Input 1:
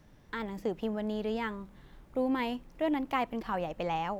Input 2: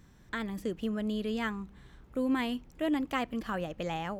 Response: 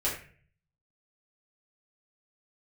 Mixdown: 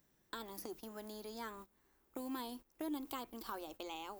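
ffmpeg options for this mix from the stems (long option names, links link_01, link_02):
-filter_complex "[0:a]acrossover=split=180|3200[link_01][link_02][link_03];[link_01]acompressor=threshold=-52dB:ratio=4[link_04];[link_02]acompressor=threshold=-44dB:ratio=4[link_05];[link_03]acompressor=threshold=-60dB:ratio=4[link_06];[link_04][link_05][link_06]amix=inputs=3:normalize=0,volume=-0.5dB,asplit=2[link_07][link_08];[1:a]equalizer=frequency=370:width_type=o:width=0.77:gain=9.5,volume=-2.5dB[link_09];[link_08]apad=whole_len=185165[link_10];[link_09][link_10]sidechaincompress=threshold=-50dB:ratio=16:attack=49:release=564[link_11];[link_07][link_11]amix=inputs=2:normalize=0,aemphasis=mode=production:type=bsi,agate=range=-17dB:threshold=-52dB:ratio=16:detection=peak,lowshelf=frequency=100:gain=6.5"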